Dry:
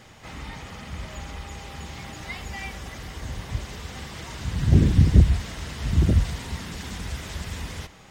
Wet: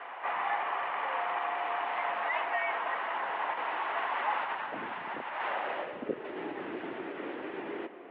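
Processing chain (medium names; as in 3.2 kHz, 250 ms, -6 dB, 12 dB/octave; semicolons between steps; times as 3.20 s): tilt shelf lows -6 dB; in parallel at 0 dB: compressor with a negative ratio -35 dBFS, ratio -1; on the sum: mistuned SSB -95 Hz 340–3000 Hz; band-pass sweep 900 Hz -> 350 Hz, 5.38–6.32 s; trim +7.5 dB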